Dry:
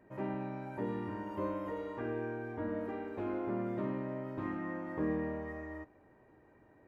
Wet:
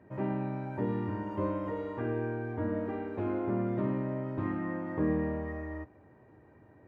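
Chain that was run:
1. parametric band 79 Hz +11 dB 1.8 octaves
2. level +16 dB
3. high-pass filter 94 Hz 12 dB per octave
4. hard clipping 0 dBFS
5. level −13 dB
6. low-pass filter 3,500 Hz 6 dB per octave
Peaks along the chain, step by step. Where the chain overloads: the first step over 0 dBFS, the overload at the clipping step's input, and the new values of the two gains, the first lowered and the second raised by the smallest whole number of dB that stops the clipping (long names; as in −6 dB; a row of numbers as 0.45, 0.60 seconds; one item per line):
−20.5, −4.5, −5.5, −5.5, −18.5, −18.5 dBFS
no step passes full scale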